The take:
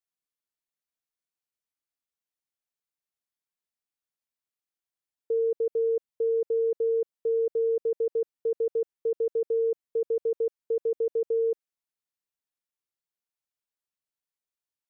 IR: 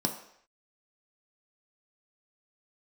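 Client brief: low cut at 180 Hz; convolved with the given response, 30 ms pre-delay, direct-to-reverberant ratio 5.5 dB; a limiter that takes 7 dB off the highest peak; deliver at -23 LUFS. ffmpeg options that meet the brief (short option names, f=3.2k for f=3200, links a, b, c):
-filter_complex "[0:a]highpass=180,alimiter=level_in=4.5dB:limit=-24dB:level=0:latency=1,volume=-4.5dB,asplit=2[a][b];[1:a]atrim=start_sample=2205,adelay=30[c];[b][c]afir=irnorm=-1:irlink=0,volume=-11.5dB[d];[a][d]amix=inputs=2:normalize=0,volume=13dB"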